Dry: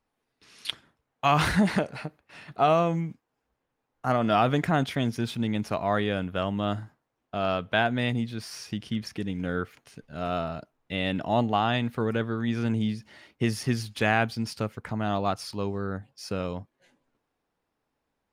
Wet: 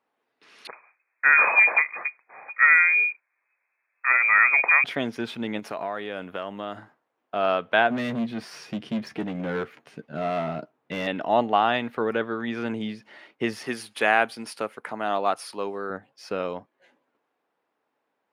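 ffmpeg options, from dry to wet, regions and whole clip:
-filter_complex "[0:a]asettb=1/sr,asplit=3[a][b][c];[a]atrim=end=0.674[d];[b]atrim=start=0.67:end=4.84,asetpts=PTS-STARTPTS,afade=t=in:d=0.004:c=qsin,afade=t=out:st=4.166:d=0.004:c=qsin,equalizer=f=160:w=4.8:g=5,lowpass=f=2.2k:t=q:w=0.5098,lowpass=f=2.2k:t=q:w=0.6013,lowpass=f=2.2k:t=q:w=0.9,lowpass=f=2.2k:t=q:w=2.563,afreqshift=-2600[e];[c]atrim=start=4.836[f];[d][e]acrossfade=d=0.004:c1=hsin:c2=qsin[g];[g][f]acrossfade=d=0.004:c1=qsin:c2=hsin,asettb=1/sr,asplit=3[h][i][j];[h]atrim=end=5.594[k];[i]atrim=start=5.59:end=6.77,asetpts=PTS-STARTPTS,afade=t=in:d=0.004:c=qsin,afade=t=out:st=1.176:d=0.004:c=qsin,highshelf=f=7.4k:g=9.5,acompressor=threshold=-29dB:ratio=12:attack=3.2:release=140:knee=1:detection=peak[l];[j]atrim=start=6.766[m];[k][l]acrossfade=d=0.004:c1=hsin:c2=qsin[n];[n][m]acrossfade=d=0.004:c1=qsin:c2=hsin,asettb=1/sr,asplit=3[o][p][q];[o]atrim=end=7.904[r];[p]atrim=start=7.9:end=11.07,asetpts=PTS-STARTPTS,afade=t=in:d=0.004:c=qsin,afade=t=out:st=3.166:d=0.004:c=qsin,volume=30dB,asoftclip=hard,volume=-30dB,equalizer=f=150:t=o:w=2.4:g=10.5,asplit=2[s][t];[t]adelay=13,volume=-11dB[u];[s][u]amix=inputs=2:normalize=0,atrim=end_sample=139797[v];[q]atrim=start=11.066[w];[r][v]acrossfade=d=0.004:c1=hsin:c2=qsin[x];[x][w]acrossfade=d=0.004:c1=qsin:c2=hsin,asettb=1/sr,asplit=3[y][z][aa];[y]atrim=end=13.664[ab];[z]atrim=start=13.66:end=15.9,asetpts=PTS-STARTPTS,afade=t=in:d=0.004:c=qsin,afade=t=out:st=2.236:d=0.004:c=qsin,highpass=f=280:p=1,equalizer=f=10k:w=2.1:g=14.5[ac];[aa]atrim=start=15.896[ad];[ab][ac]acrossfade=d=0.004:c1=hsin:c2=qsin[ae];[ae][ad]acrossfade=d=0.004:c1=qsin:c2=hsin,highpass=160,bass=f=250:g=-12,treble=f=4k:g=-13,volume=5dB"

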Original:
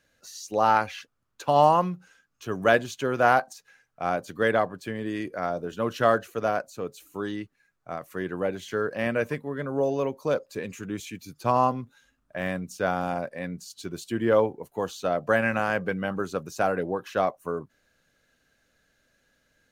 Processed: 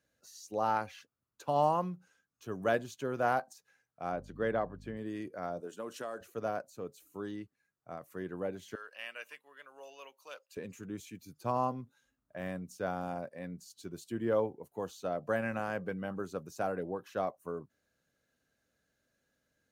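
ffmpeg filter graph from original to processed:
-filter_complex "[0:a]asettb=1/sr,asplit=3[a][b][c];[a]atrim=end=4.124[d];[b]atrim=start=4.12:end=4.97,asetpts=PTS-STARTPTS,afade=t=in:d=0.004:c=qsin,afade=t=out:st=0.846:d=0.004:c=qsin,aemphasis=mode=reproduction:type=50fm,aeval=exprs='val(0)+0.00891*(sin(2*PI*50*n/s)+sin(2*PI*2*50*n/s)/2+sin(2*PI*3*50*n/s)/3+sin(2*PI*4*50*n/s)/4+sin(2*PI*5*50*n/s)/5)':c=same[e];[c]atrim=start=4.966[f];[d][e]acrossfade=d=0.004:c1=hsin:c2=qsin[g];[g][f]acrossfade=d=0.004:c1=qsin:c2=hsin,asettb=1/sr,asplit=3[h][i][j];[h]atrim=end=5.604[k];[i]atrim=start=5.6:end=6.21,asetpts=PTS-STARTPTS,afade=t=in:d=0.004:c=qsin,afade=t=out:st=0.606:d=0.004:c=qsin,equalizer=f=8.3k:w=1.6:g=11,acompressor=threshold=-24dB:ratio=10:attack=3.2:release=140:knee=1:detection=peak,highpass=270[l];[j]atrim=start=6.206[m];[k][l]acrossfade=d=0.004:c1=hsin:c2=qsin[n];[n][m]acrossfade=d=0.004:c1=qsin:c2=hsin,asettb=1/sr,asplit=3[o][p][q];[o]atrim=end=8.754[r];[p]atrim=start=8.75:end=10.57,asetpts=PTS-STARTPTS,afade=t=in:d=0.004:c=qsin,afade=t=out:st=1.816:d=0.004:c=qsin,highpass=1.4k,equalizer=f=2.8k:w=5.1:g=13.5[s];[q]atrim=start=10.566[t];[r][s]acrossfade=d=0.004:c1=hsin:c2=qsin[u];[u][t]acrossfade=d=0.004:c1=qsin:c2=hsin,highpass=58,equalizer=f=2.5k:t=o:w=2.4:g=-5.5,volume=-8dB"

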